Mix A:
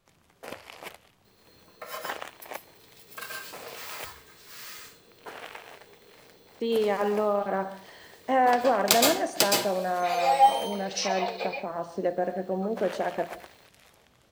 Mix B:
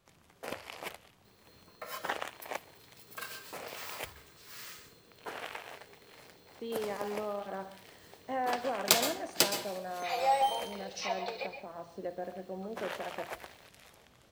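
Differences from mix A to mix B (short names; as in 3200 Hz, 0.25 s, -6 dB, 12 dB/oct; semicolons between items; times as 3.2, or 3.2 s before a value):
speech -11.5 dB; second sound: send -11.0 dB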